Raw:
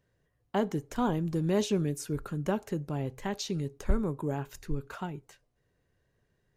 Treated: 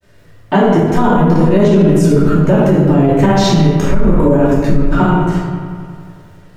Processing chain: high shelf 2900 Hz -9 dB; in parallel at +1 dB: compressor, threshold -36 dBFS, peak gain reduction 16.5 dB; on the sum: bit-crush 12-bit; flange 0.65 Hz, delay 9.8 ms, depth 1.9 ms, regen +35%; grains 0.1 s, spray 32 ms, pitch spread up and down by 0 st; on a send: analogue delay 90 ms, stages 2048, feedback 77%, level -12.5 dB; on the sum: shoebox room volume 460 m³, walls mixed, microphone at 2.7 m; maximiser +19.5 dB; gain -1 dB

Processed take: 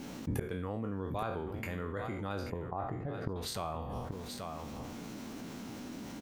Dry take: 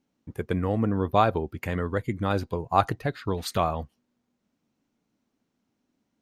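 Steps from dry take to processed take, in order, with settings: spectral trails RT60 0.44 s; 2.5–3.36 Bessel low-pass 750 Hz, order 2; flipped gate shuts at -25 dBFS, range -27 dB; echo 0.833 s -14.5 dB; fast leveller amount 70%; gain +2.5 dB

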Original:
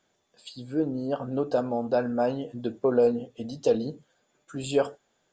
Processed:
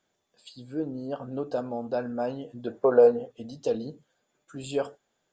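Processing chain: 2.67–3.32 band shelf 900 Hz +9.5 dB 2.4 oct; gain -4.5 dB

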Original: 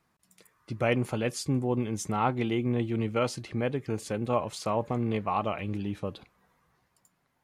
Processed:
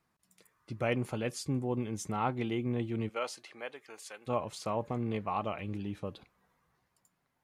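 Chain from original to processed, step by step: 3.08–4.26 HPF 510 Hz -> 1100 Hz 12 dB/oct; gain -5 dB

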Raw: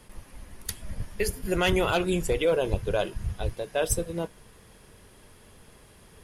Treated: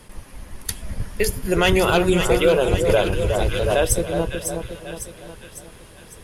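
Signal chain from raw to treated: wow and flutter 18 cents; split-band echo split 1400 Hz, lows 0.364 s, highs 0.552 s, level -6 dB; 2.89–3.84 backwards sustainer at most 26 dB/s; gain +6.5 dB

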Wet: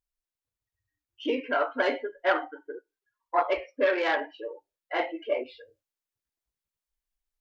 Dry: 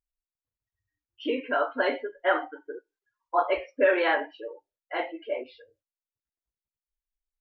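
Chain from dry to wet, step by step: self-modulated delay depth 0.07 ms; vocal rider within 3 dB 0.5 s

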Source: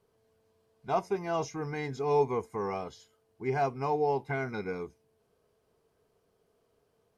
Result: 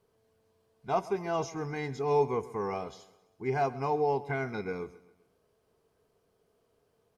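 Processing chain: feedback echo 0.132 s, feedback 44%, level -18.5 dB

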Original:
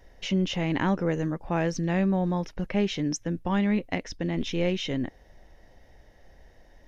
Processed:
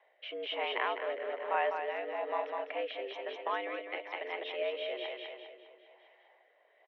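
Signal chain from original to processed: feedback echo 0.202 s, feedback 54%, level -4.5 dB; mistuned SSB +100 Hz 420–3200 Hz; rotary speaker horn 1.1 Hz; gain -1.5 dB

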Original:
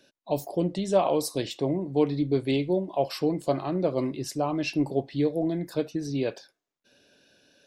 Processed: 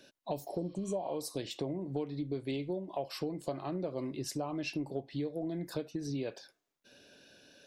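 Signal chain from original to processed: spectral repair 0.49–1.12, 1000–5700 Hz both; compressor 6:1, threshold -36 dBFS, peak gain reduction 18 dB; gain +2 dB

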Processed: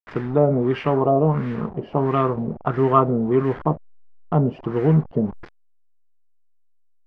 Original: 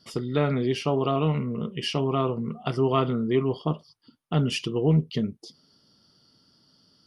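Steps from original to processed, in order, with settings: level-crossing sampler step -35.5 dBFS; LFO low-pass sine 1.5 Hz 590–1900 Hz; gain +4 dB

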